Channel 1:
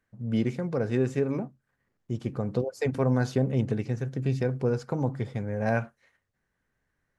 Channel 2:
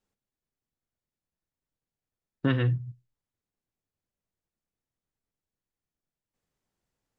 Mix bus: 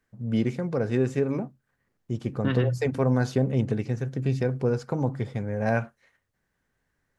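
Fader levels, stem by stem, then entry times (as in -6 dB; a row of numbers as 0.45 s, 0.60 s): +1.5 dB, -1.5 dB; 0.00 s, 0.00 s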